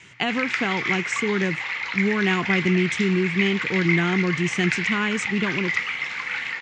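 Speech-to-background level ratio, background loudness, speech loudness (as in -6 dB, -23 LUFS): 1.0 dB, -25.5 LUFS, -24.5 LUFS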